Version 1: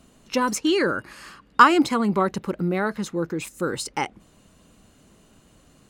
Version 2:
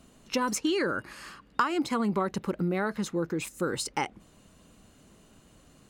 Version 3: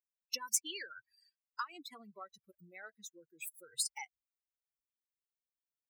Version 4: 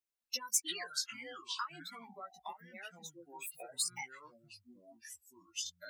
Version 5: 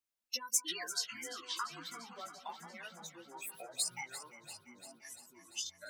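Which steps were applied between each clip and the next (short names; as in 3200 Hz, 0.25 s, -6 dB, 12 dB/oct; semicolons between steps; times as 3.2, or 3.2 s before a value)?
compressor 5:1, threshold -22 dBFS, peak gain reduction 13 dB; gain -2 dB
per-bin expansion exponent 3; differentiator; gain +4.5 dB
echoes that change speed 0.207 s, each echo -6 st, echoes 2, each echo -6 dB; chorus voices 4, 0.4 Hz, delay 15 ms, depth 3.1 ms; gain +3.5 dB
echo with dull and thin repeats by turns 0.172 s, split 1100 Hz, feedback 82%, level -11 dB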